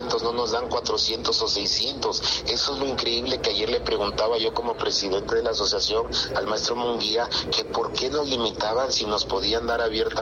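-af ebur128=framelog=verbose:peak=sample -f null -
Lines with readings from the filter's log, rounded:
Integrated loudness:
  I:         -23.6 LUFS
  Threshold: -33.6 LUFS
Loudness range:
  LRA:         1.0 LU
  Threshold: -43.6 LUFS
  LRA low:   -24.0 LUFS
  LRA high:  -23.0 LUFS
Sample peak:
  Peak:      -11.3 dBFS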